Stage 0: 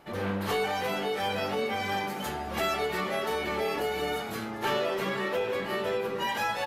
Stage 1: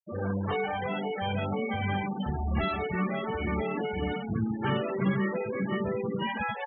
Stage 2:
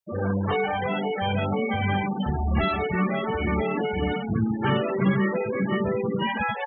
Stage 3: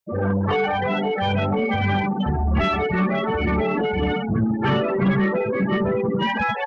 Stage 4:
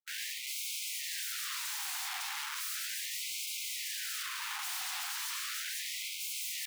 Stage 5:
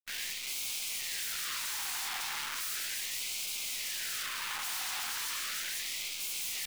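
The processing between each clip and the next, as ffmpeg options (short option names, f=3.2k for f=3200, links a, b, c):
-af "lowpass=3.6k,afftfilt=real='re*gte(hypot(re,im),0.0447)':imag='im*gte(hypot(re,im),0.0447)':win_size=1024:overlap=0.75,asubboost=boost=9.5:cutoff=180"
-af "acontrast=31"
-af "asoftclip=type=tanh:threshold=-17.5dB,volume=5dB"
-af "aeval=exprs='(mod(26.6*val(0)+1,2)-1)/26.6':c=same,acrusher=bits=8:mix=0:aa=0.000001,afftfilt=real='re*gte(b*sr/1024,690*pow(2100/690,0.5+0.5*sin(2*PI*0.36*pts/sr)))':imag='im*gte(b*sr/1024,690*pow(2100/690,0.5+0.5*sin(2*PI*0.36*pts/sr)))':win_size=1024:overlap=0.75,volume=-4.5dB"
-af "acrusher=bits=8:dc=4:mix=0:aa=0.000001,volume=1.5dB"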